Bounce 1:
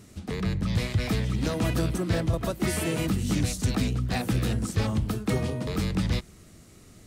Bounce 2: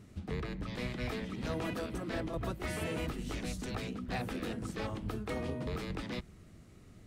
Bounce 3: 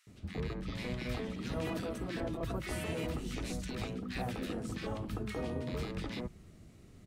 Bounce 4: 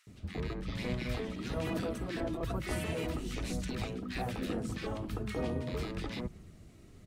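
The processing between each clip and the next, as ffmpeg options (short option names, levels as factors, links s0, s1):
-af "afftfilt=real='re*lt(hypot(re,im),0.282)':imag='im*lt(hypot(re,im),0.282)':win_size=1024:overlap=0.75,bass=f=250:g=3,treble=f=4000:g=-9,volume=0.501"
-filter_complex "[0:a]acrossover=split=1400[s0][s1];[s0]adelay=70[s2];[s2][s1]amix=inputs=2:normalize=0"
-af "aphaser=in_gain=1:out_gain=1:delay=3.2:decay=0.24:speed=1.1:type=sinusoidal,volume=1.12"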